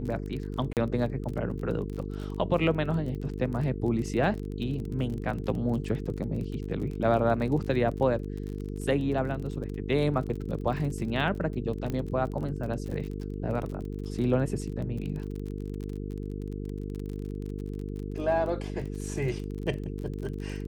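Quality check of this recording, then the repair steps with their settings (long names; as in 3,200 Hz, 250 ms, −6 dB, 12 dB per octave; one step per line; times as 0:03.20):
mains buzz 50 Hz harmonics 9 −35 dBFS
surface crackle 33 per second −35 dBFS
0:00.73–0:00.77: drop-out 38 ms
0:11.90: click −20 dBFS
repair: click removal
hum removal 50 Hz, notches 9
repair the gap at 0:00.73, 38 ms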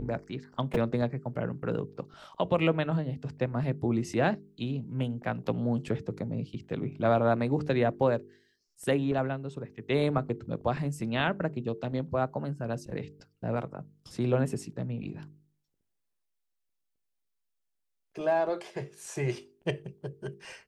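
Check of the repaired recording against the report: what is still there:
none of them is left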